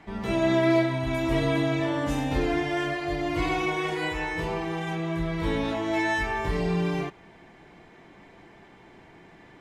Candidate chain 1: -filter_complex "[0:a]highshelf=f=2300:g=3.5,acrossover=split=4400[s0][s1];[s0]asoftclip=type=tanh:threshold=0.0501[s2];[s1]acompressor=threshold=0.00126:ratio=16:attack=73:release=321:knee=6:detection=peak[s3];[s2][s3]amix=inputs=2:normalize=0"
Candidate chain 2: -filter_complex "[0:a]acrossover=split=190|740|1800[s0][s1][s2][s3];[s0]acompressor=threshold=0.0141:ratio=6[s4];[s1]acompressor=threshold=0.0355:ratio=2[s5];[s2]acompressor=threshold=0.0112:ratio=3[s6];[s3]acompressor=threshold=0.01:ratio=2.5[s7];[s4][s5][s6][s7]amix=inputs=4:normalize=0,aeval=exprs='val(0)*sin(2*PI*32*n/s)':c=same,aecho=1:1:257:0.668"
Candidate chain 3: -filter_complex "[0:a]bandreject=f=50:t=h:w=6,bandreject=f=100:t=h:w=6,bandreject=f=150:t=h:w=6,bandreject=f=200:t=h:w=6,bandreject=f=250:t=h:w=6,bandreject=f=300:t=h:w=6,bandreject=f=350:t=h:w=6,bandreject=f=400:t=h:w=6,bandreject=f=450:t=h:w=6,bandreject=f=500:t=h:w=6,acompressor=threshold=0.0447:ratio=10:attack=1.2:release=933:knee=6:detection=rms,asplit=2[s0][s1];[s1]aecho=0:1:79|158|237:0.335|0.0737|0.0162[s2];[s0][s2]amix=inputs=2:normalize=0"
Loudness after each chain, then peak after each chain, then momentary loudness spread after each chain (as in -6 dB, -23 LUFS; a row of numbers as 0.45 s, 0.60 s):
-30.5 LUFS, -31.5 LUFS, -34.0 LUFS; -25.5 dBFS, -17.5 dBFS, -22.0 dBFS; 3 LU, 4 LU, 19 LU